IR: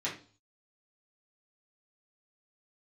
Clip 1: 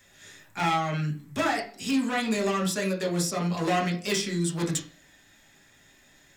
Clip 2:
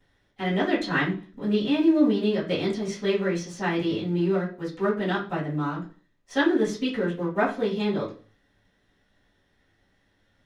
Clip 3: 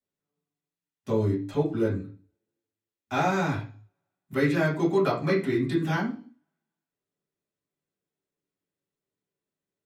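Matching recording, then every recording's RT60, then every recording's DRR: 3; 0.40, 0.40, 0.40 s; -1.0, -16.5, -7.5 dB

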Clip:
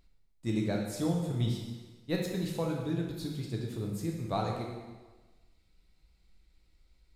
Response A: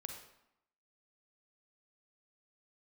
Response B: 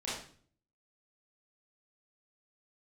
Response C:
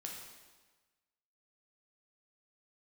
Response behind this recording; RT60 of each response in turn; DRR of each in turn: C; 0.80, 0.50, 1.3 s; 3.5, -9.0, -1.0 dB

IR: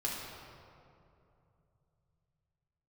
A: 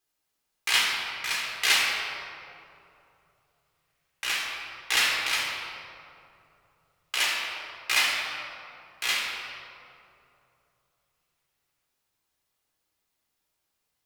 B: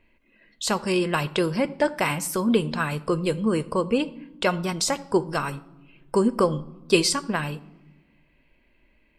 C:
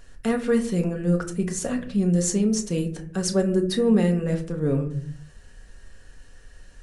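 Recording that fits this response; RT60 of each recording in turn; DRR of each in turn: A; 2.8 s, not exponential, 0.55 s; -3.5, 15.5, 3.0 dB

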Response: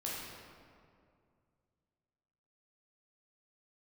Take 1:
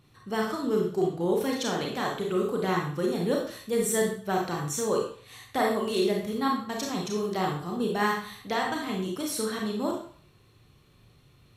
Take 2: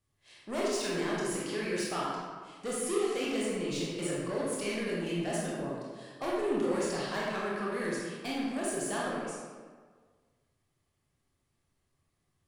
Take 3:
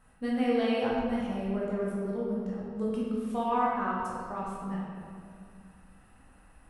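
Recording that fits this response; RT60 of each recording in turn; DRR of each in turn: 3; 0.45, 1.6, 2.3 s; -1.0, -5.5, -6.0 dB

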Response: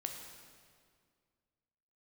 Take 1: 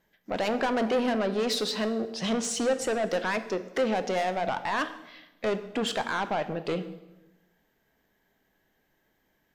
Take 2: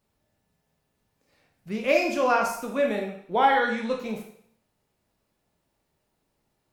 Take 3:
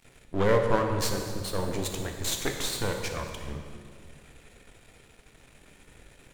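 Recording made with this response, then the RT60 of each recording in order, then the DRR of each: 3; 1.0, 0.65, 2.0 s; 9.5, 1.0, 3.0 dB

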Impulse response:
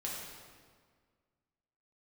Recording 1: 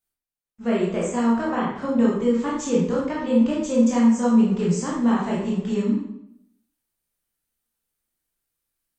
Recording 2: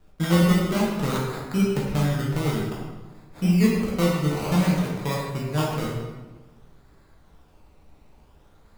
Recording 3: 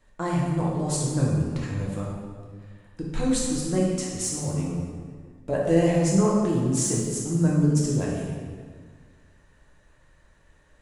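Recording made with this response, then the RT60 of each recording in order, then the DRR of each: 3; 0.75, 1.2, 1.8 s; -5.5, -5.5, -5.0 dB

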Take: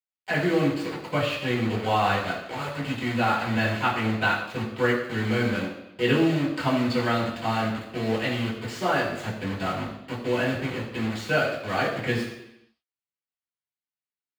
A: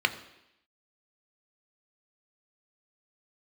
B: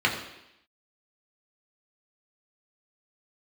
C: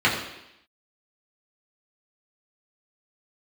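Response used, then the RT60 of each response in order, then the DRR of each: C; 0.85, 0.85, 0.85 s; 8.0, -2.0, -6.5 dB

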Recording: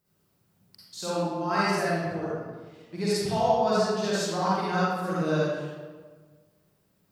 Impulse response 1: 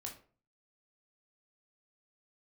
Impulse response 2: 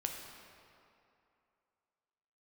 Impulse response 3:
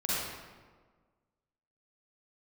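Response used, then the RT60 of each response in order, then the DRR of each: 3; 0.40, 2.7, 1.5 s; 0.0, 1.5, -9.0 dB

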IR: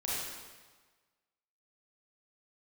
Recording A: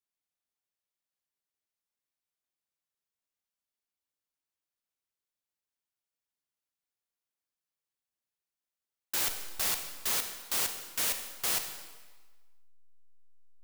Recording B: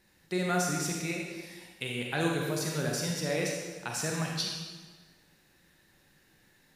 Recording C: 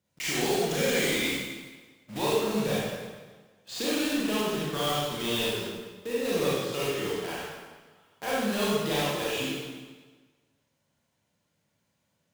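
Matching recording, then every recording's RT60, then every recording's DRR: C; 1.4, 1.4, 1.4 s; 6.5, -1.0, -8.0 dB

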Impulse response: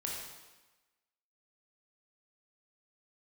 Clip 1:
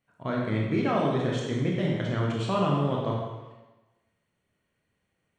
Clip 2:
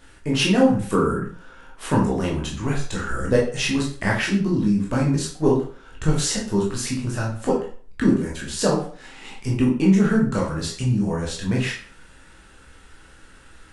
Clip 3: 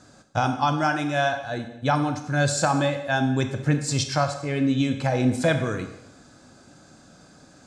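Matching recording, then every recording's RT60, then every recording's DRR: 1; 1.1, 0.45, 0.90 s; -3.0, -3.5, 7.0 dB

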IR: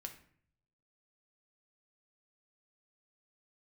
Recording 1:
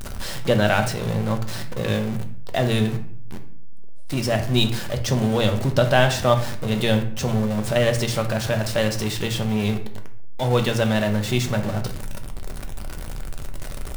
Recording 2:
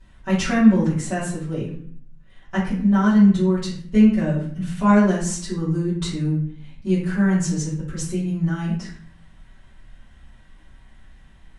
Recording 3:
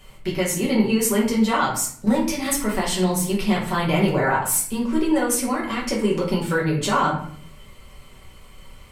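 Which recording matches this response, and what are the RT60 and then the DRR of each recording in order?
1; 0.55, 0.55, 0.55 s; 4.5, -13.0, -4.5 dB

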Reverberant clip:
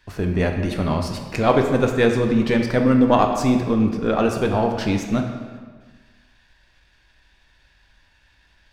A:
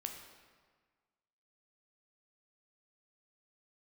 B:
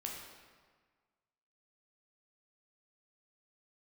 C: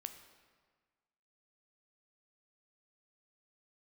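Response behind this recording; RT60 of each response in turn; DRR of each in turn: A; 1.5, 1.5, 1.5 s; 3.0, -1.5, 7.5 dB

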